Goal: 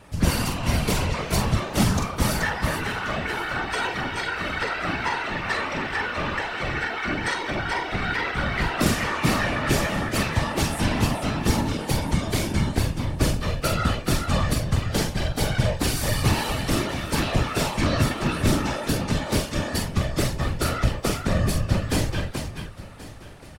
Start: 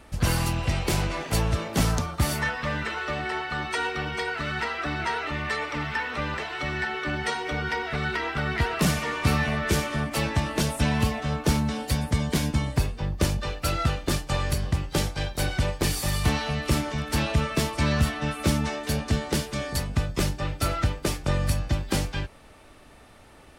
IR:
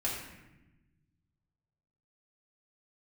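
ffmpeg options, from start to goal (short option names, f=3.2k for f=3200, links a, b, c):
-filter_complex "[0:a]asplit=2[a][b];[b]aecho=0:1:44|429:0.562|0.501[c];[a][c]amix=inputs=2:normalize=0,afftfilt=real='hypot(re,im)*cos(2*PI*random(0))':imag='hypot(re,im)*sin(2*PI*random(1))':win_size=512:overlap=0.75,asplit=2[d][e];[e]aecho=0:1:1080|2160|3240:0.126|0.0441|0.0154[f];[d][f]amix=inputs=2:normalize=0,volume=6.5dB"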